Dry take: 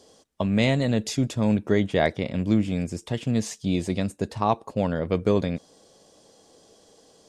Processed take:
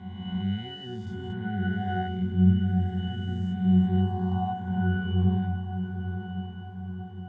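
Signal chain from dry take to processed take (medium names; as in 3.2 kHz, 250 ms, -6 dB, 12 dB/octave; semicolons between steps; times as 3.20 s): reverse spectral sustain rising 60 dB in 2.31 s; ten-band graphic EQ 125 Hz +9 dB, 250 Hz +6 dB, 500 Hz -11 dB, 1 kHz +10 dB, 2 kHz +10 dB, 4 kHz +4 dB, 8 kHz +10 dB; in parallel at -2.5 dB: peak limiter -5.5 dBFS, peak gain reduction 8 dB; on the sum: pitch-class resonator F#, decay 0.79 s; echo that smears into a reverb 999 ms, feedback 56%, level -9 dB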